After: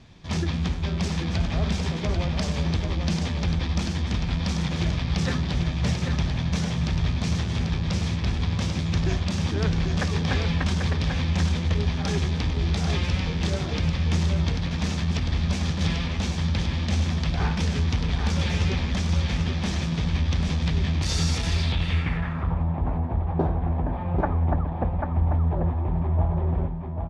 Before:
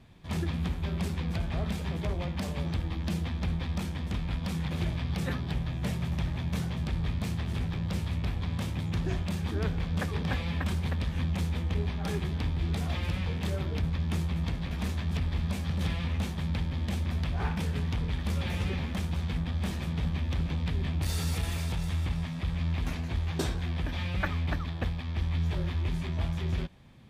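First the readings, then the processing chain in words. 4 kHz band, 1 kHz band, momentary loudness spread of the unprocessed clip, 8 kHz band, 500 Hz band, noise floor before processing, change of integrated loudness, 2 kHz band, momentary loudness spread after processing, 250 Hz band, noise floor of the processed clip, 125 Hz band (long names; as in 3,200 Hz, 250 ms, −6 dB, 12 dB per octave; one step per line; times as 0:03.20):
+9.0 dB, +8.0 dB, 2 LU, +9.0 dB, +7.0 dB, −35 dBFS, +6.5 dB, +6.0 dB, 3 LU, +6.5 dB, −29 dBFS, +6.0 dB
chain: on a send: single-tap delay 791 ms −5 dB
on the sum: low-pass filter sweep 5,900 Hz → 820 Hz, 0:21.46–0:22.67
level +5 dB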